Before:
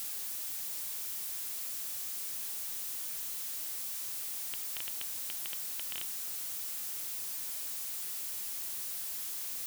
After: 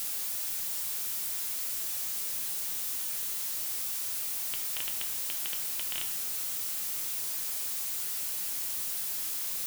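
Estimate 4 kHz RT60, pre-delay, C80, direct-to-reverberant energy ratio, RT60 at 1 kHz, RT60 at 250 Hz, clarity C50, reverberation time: 0.70 s, 6 ms, 10.5 dB, 4.0 dB, 0.95 s, 1.5 s, 9.0 dB, 1.1 s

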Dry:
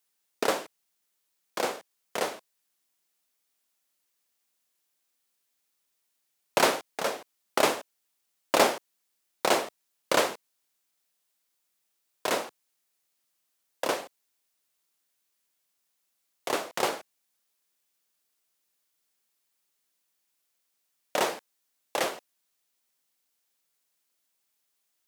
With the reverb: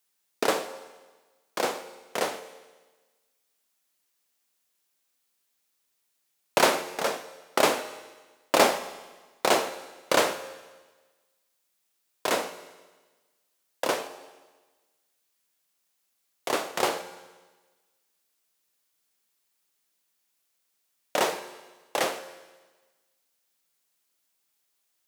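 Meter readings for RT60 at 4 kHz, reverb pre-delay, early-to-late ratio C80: 1.3 s, 11 ms, 13.0 dB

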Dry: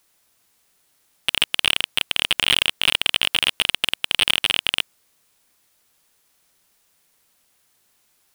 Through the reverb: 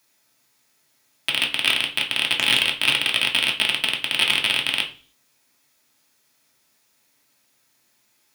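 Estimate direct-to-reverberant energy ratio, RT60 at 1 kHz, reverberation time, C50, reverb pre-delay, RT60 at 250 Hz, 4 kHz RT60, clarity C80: 0.0 dB, 0.40 s, 0.40 s, 11.5 dB, 3 ms, 0.50 s, 0.45 s, 16.5 dB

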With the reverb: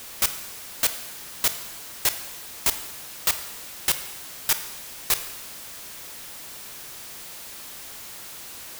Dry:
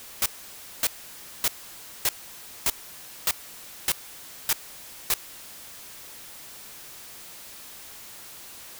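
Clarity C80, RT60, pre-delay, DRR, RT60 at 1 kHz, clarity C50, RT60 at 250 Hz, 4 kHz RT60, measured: 13.0 dB, 1.1 s, 27 ms, 9.5 dB, 1.1 s, 11.0 dB, 1.1 s, 1.1 s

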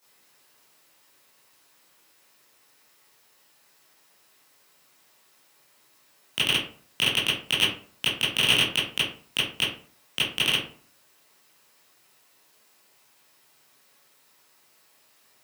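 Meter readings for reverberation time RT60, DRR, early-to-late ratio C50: 0.45 s, -11.5 dB, 4.0 dB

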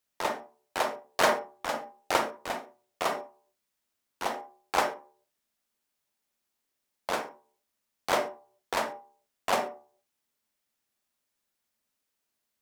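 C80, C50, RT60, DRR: 15.5 dB, 9.5 dB, 0.45 s, 5.5 dB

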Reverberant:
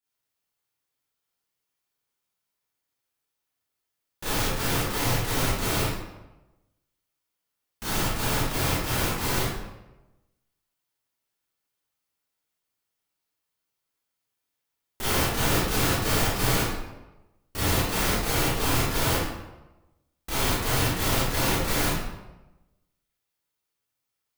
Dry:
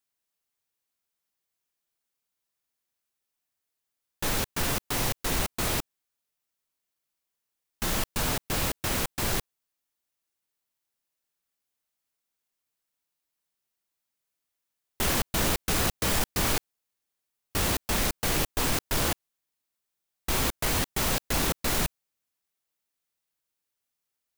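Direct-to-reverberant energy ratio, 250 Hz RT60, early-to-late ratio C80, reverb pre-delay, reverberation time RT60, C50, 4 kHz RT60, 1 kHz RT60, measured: -11.0 dB, 1.0 s, 1.5 dB, 26 ms, 1.1 s, -3.5 dB, 0.70 s, 1.0 s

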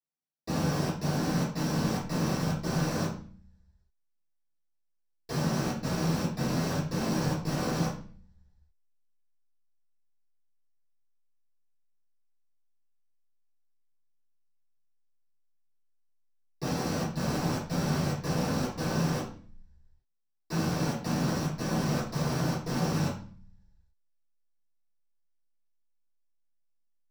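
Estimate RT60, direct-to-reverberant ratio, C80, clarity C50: 0.45 s, -9.0 dB, 10.0 dB, 5.0 dB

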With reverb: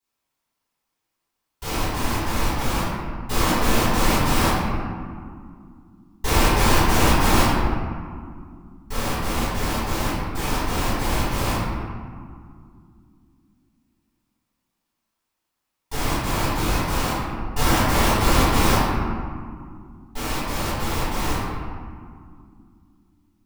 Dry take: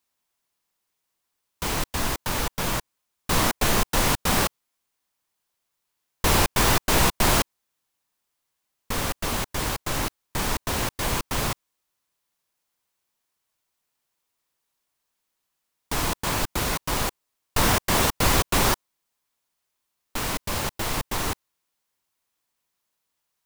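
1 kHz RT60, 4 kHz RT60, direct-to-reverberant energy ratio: 2.1 s, 1.0 s, -14.5 dB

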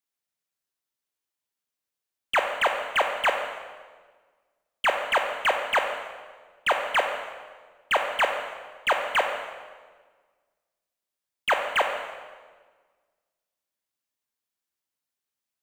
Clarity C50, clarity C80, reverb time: 5.0 dB, 7.0 dB, 1.5 s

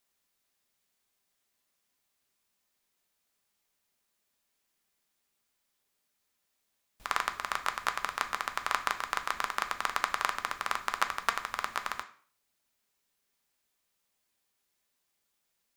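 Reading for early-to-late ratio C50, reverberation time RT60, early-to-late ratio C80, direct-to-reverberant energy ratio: 13.0 dB, 0.50 s, 17.5 dB, 6.0 dB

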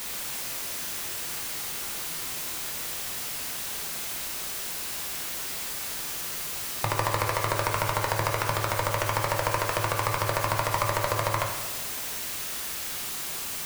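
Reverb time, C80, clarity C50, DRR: 1.3 s, 6.0 dB, 4.0 dB, 1.0 dB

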